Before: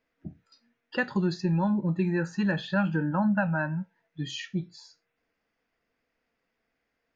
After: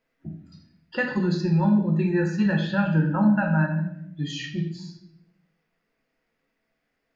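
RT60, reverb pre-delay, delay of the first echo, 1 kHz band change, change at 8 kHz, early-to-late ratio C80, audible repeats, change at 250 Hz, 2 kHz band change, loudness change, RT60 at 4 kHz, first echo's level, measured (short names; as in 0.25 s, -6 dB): 0.75 s, 4 ms, none, +2.5 dB, n/a, 9.0 dB, none, +5.0 dB, +2.5 dB, +4.5 dB, 0.65 s, none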